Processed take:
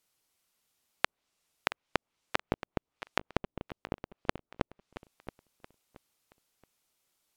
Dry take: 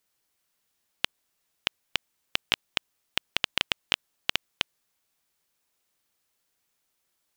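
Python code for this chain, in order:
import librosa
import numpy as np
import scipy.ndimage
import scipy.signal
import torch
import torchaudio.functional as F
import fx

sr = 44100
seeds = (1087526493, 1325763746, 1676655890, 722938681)

y = fx.peak_eq(x, sr, hz=1700.0, db=-5.0, octaves=0.25)
y = fx.env_lowpass_down(y, sr, base_hz=460.0, full_db=-34.5)
y = fx.echo_feedback(y, sr, ms=675, feedback_pct=31, wet_db=-14)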